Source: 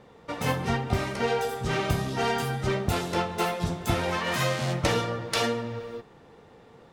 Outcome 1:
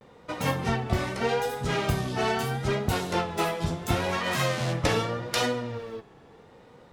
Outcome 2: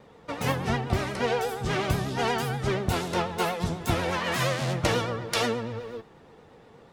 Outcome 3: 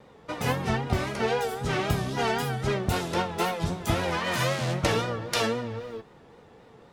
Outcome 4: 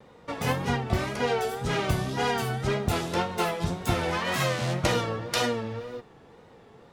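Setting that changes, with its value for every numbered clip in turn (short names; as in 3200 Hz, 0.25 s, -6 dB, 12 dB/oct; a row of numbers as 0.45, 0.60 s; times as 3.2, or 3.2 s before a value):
vibrato, rate: 0.78, 8.3, 3.8, 1.9 Hz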